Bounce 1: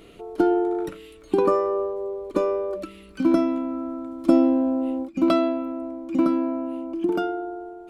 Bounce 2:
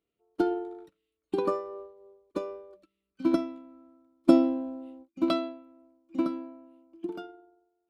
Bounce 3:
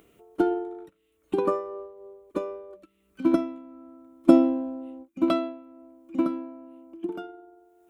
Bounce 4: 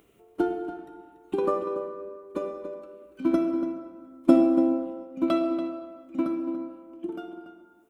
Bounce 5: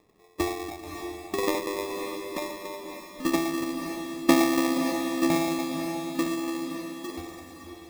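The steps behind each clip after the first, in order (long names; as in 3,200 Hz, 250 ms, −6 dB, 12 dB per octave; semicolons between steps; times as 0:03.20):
high-pass filter 41 Hz; dynamic equaliser 3,900 Hz, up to +7 dB, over −55 dBFS, Q 1.8; expander for the loud parts 2.5 to 1, over −38 dBFS
parametric band 4,600 Hz −10 dB 0.7 octaves; in parallel at −1.5 dB: upward compression, threshold −34 dBFS; on the sum: level −2 dB
slap from a distant wall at 49 metres, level −10 dB; dense smooth reverb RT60 1.8 s, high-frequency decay 0.65×, DRR 5 dB; level −2.5 dB
auto-filter low-pass saw up 8.4 Hz 790–3,900 Hz; sample-rate reduction 1,500 Hz, jitter 0%; on a send: feedback delay with all-pass diffusion 558 ms, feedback 42%, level −6.5 dB; on the sum: level −3 dB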